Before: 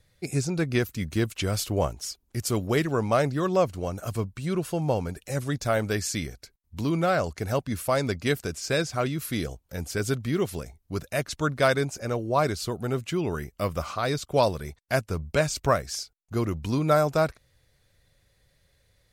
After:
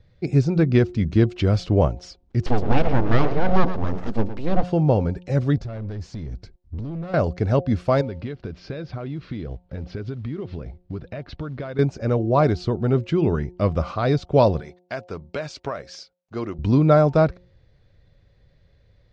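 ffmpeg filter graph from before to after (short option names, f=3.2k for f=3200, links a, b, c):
-filter_complex "[0:a]asettb=1/sr,asplit=3[a][b][c];[a]atrim=end=2.464[d];[b]atrim=start=2.46:end=4.63,asetpts=PTS-STARTPTS,afade=t=in:d=0.004:c=qsin,afade=t=out:st=2.166:d=0.004:c=qsin,equalizer=f=340:t=o:w=0.33:g=7,aecho=1:1:114:0.282,atrim=end_sample=95697,aeval=exprs='abs(val(0))':c=same[e];[c]atrim=start=4.626[f];[d][e]acrossfade=d=0.004:c1=hsin:c2=qsin[g];[g][f]acrossfade=d=0.004:c1=qsin:c2=hsin,asettb=1/sr,asplit=3[h][i][j];[h]atrim=end=5.574[k];[i]atrim=start=5.57:end=7.14,asetpts=PTS-STARTPTS,afade=t=in:d=0.004:c=qsin,afade=t=out:st=1.566:d=0.004:c=qsin,bass=f=250:g=9,treble=f=4k:g=3,acompressor=threshold=-33dB:ratio=6:attack=3.2:release=140:knee=1:detection=peak,asoftclip=type=hard:threshold=-36.5dB[l];[j]atrim=start=7.136[m];[k][l]acrossfade=d=0.004:c1=hsin:c2=qsin[n];[n][m]acrossfade=d=0.004:c1=qsin:c2=hsin,asettb=1/sr,asplit=3[o][p][q];[o]atrim=end=8.014[r];[p]atrim=start=8.01:end=11.79,asetpts=PTS-STARTPTS,afade=t=in:d=0.004:c=qsin,afade=t=out:st=3.776:d=0.004:c=qsin,lowpass=f=4.4k:w=0.5412,lowpass=f=4.4k:w=1.3066,acompressor=threshold=-35dB:ratio=6:attack=3.2:release=140:knee=1:detection=peak,acrusher=bits=6:mode=log:mix=0:aa=0.000001[s];[q]atrim=start=11.786[t];[r][s]acrossfade=d=0.004:c1=hsin:c2=qsin[u];[u][t]acrossfade=d=0.004:c1=qsin:c2=hsin,asettb=1/sr,asplit=3[v][w][x];[v]atrim=end=14.604[y];[w]atrim=start=14.6:end=16.59,asetpts=PTS-STARTPTS,afade=t=in:d=0.004:c=qsin,afade=t=out:st=1.986:d=0.004:c=qsin,highpass=f=760:p=1,acompressor=threshold=-27dB:ratio=6:attack=3.2:release=140:knee=1:detection=peak[z];[x]atrim=start=16.586[aa];[y][z]acrossfade=d=0.004:c1=hsin:c2=qsin[ab];[ab][aa]acrossfade=d=0.004:c1=qsin:c2=hsin,lowpass=f=5k:w=0.5412,lowpass=f=5k:w=1.3066,tiltshelf=f=790:g=6,bandreject=f=179.1:t=h:w=4,bandreject=f=358.2:t=h:w=4,bandreject=f=537.3:t=h:w=4,bandreject=f=716.4:t=h:w=4,bandreject=f=895.5:t=h:w=4,volume=4dB"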